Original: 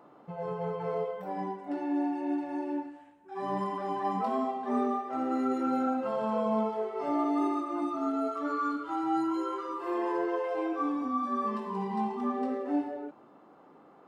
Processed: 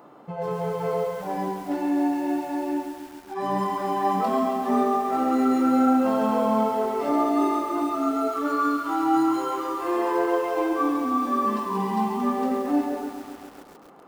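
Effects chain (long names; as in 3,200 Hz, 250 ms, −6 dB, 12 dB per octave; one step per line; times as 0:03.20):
high-shelf EQ 6,000 Hz +8 dB
feedback echo at a low word length 136 ms, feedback 80%, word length 8 bits, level −10 dB
level +6.5 dB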